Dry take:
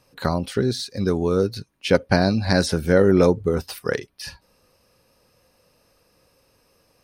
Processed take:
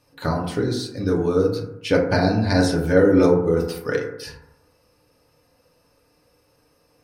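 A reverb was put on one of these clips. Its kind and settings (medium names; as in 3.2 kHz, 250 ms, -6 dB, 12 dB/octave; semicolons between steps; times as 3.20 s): FDN reverb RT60 0.85 s, low-frequency decay 1×, high-frequency decay 0.3×, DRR -1.5 dB; trim -4 dB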